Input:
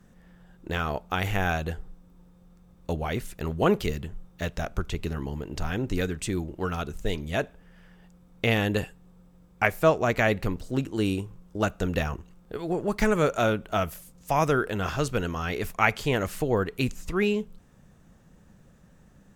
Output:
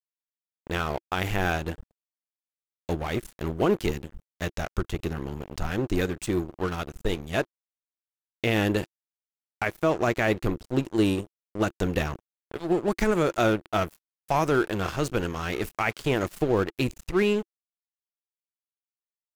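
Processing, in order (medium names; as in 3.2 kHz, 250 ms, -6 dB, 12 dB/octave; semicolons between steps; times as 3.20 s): crossover distortion -36 dBFS; dynamic bell 340 Hz, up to +8 dB, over -46 dBFS, Q 4.1; peak limiter -15 dBFS, peak gain reduction 10 dB; trim +2.5 dB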